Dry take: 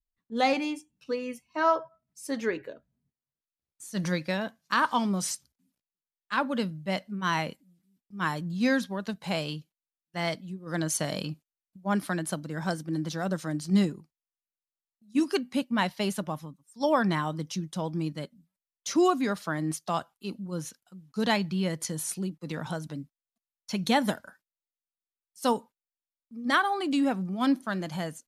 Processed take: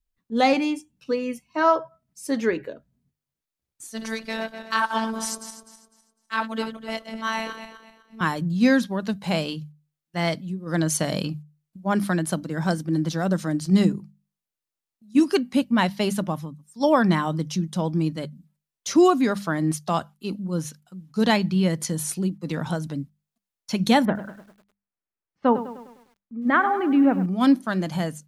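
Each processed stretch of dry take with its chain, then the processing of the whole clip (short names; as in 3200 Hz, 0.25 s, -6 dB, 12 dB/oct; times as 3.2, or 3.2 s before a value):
3.87–8.21 regenerating reverse delay 0.126 s, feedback 53%, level -9 dB + bell 190 Hz -10 dB 1.4 oct + robotiser 223 Hz
24.05–27.26 LPF 2200 Hz 24 dB/oct + lo-fi delay 0.101 s, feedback 55%, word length 9-bit, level -13 dB
whole clip: low shelf 360 Hz +5.5 dB; notches 50/100/150/200 Hz; gain +4 dB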